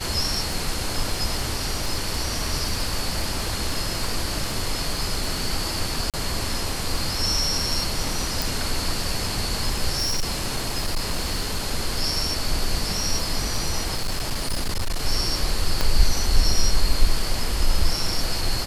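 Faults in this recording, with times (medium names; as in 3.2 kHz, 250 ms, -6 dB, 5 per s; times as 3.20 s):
crackle 14 per s -27 dBFS
6.10–6.14 s: dropout 37 ms
8.42 s: pop
9.97–11.65 s: clipped -19 dBFS
13.94–15.01 s: clipped -20 dBFS
15.81 s: pop -7 dBFS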